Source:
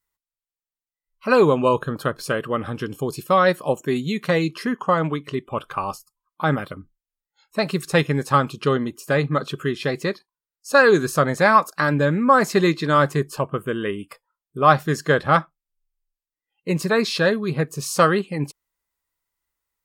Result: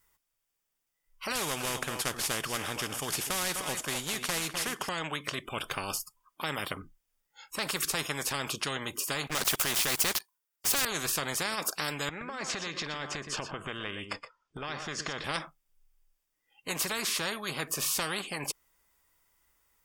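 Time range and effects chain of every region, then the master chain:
1.35–4.89 s: CVSD coder 64 kbps + delay 253 ms -18 dB
9.27–10.85 s: tilt EQ +3.5 dB/octave + waveshaping leveller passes 3 + tape noise reduction on one side only decoder only
12.09–15.24 s: low-pass 6.2 kHz 24 dB/octave + compression, threshold -30 dBFS + delay 120 ms -14.5 dB
whole clip: band-stop 4.1 kHz, Q 8; peak limiter -10 dBFS; spectrum-flattening compressor 4:1

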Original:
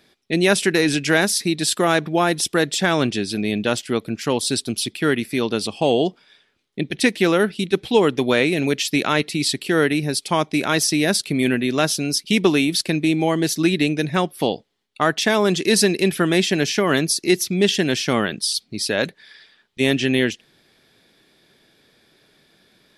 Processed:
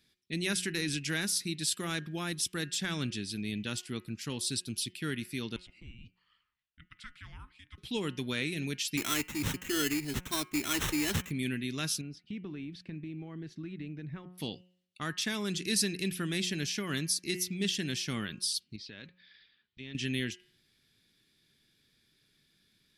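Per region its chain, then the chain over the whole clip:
5.56–7.78 s: compression 1.5:1, threshold -39 dBFS + band-pass filter 1.7 kHz, Q 1.2 + frequency shift -470 Hz
8.97–11.31 s: comb 2.9 ms, depth 95% + sample-rate reducer 4.7 kHz
12.01–14.38 s: low-pass 1.5 kHz + compression 3:1, threshold -24 dBFS
18.76–19.95 s: block-companded coder 7-bit + low-pass 4.2 kHz 24 dB/octave + compression 2:1, threshold -35 dBFS
whole clip: amplifier tone stack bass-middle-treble 6-0-2; de-hum 181 Hz, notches 17; trim +5 dB

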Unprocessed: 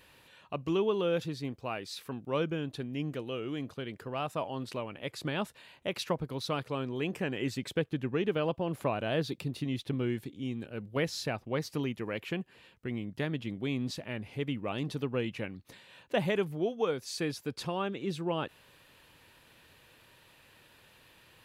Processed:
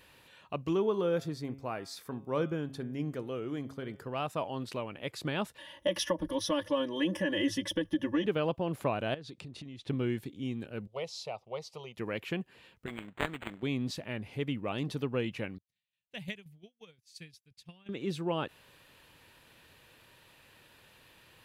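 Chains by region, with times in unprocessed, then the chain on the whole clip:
0.73–4.04 s: peaking EQ 2.8 kHz -10.5 dB 0.49 oct + band-stop 3.9 kHz + de-hum 136 Hz, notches 27
5.58–8.26 s: rippled EQ curve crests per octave 1.2, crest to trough 15 dB + compression, threshold -28 dBFS + comb 3.5 ms, depth 97%
9.14–9.89 s: low-pass 9.1 kHz 24 dB/octave + compression 20:1, threshold -41 dBFS
10.87–11.97 s: high-pass 460 Hz 6 dB/octave + distance through air 70 m + static phaser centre 680 Hz, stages 4
12.86–13.63 s: dead-time distortion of 0.12 ms + tilt EQ +4 dB/octave + decimation joined by straight lines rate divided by 8×
15.58–17.89 s: high-order bell 610 Hz -15 dB 2.9 oct + tremolo saw down 5.7 Hz, depth 55% + upward expansion 2.5:1, over -55 dBFS
whole clip: none

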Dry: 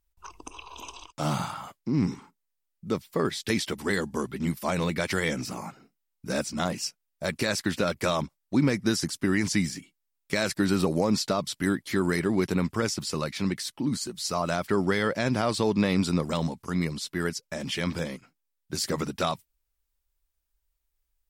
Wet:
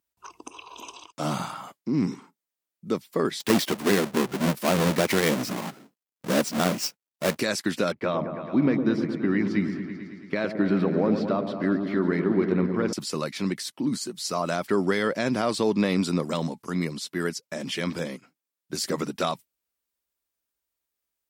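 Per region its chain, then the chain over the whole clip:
3.40–7.40 s: square wave that keeps the level + high-pass 51 Hz
7.92–12.93 s: expander -53 dBFS + distance through air 360 m + delay with an opening low-pass 110 ms, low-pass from 750 Hz, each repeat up 1 oct, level -6 dB
whole clip: high-pass 230 Hz 12 dB/octave; bass shelf 330 Hz +6.5 dB; band-stop 850 Hz, Q 23

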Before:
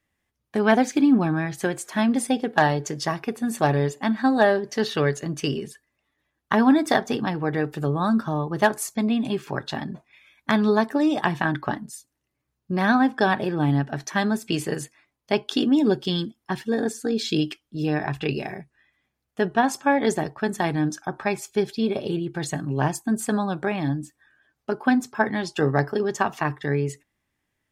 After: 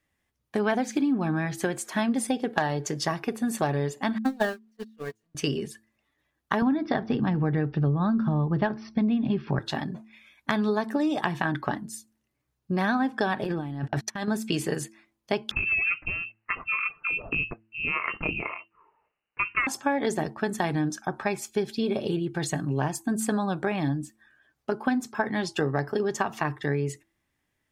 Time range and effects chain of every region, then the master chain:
4.18–5.35 s: jump at every zero crossing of -24 dBFS + gate -16 dBFS, range -52 dB + comb 4.3 ms, depth 52%
6.62–9.59 s: brick-wall FIR low-pass 5.9 kHz + tone controls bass +11 dB, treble -10 dB
13.44–14.28 s: gate -33 dBFS, range -32 dB + compressor with a negative ratio -30 dBFS
15.51–19.67 s: tilt EQ +3 dB/octave + overload inside the chain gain 13 dB + frequency inversion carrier 2.9 kHz
whole clip: de-hum 110.2 Hz, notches 3; compression 5:1, threshold -22 dBFS

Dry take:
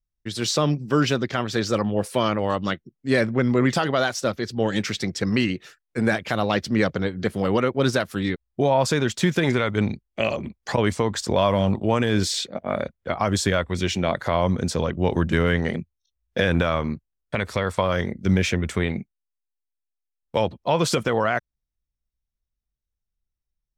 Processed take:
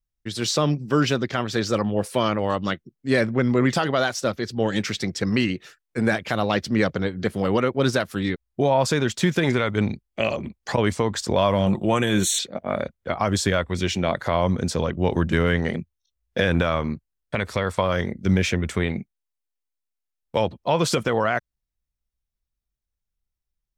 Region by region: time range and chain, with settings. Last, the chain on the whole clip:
11.66–12.39 s: Butterworth band-stop 4.9 kHz, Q 2.7 + treble shelf 5.5 kHz +11 dB + comb 5.7 ms, depth 40%
whole clip: none

